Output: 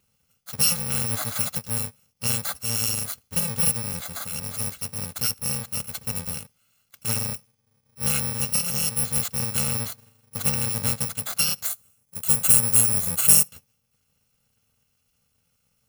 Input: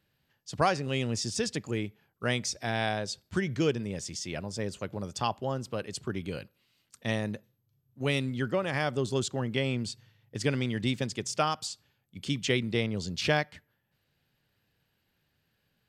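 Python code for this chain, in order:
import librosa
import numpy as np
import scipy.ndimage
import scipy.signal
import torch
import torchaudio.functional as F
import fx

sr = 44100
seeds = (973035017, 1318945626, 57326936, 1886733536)

y = fx.bit_reversed(x, sr, seeds[0], block=128)
y = fx.high_shelf_res(y, sr, hz=6300.0, db=6.5, q=1.5, at=(11.65, 13.48))
y = y * librosa.db_to_amplitude(4.5)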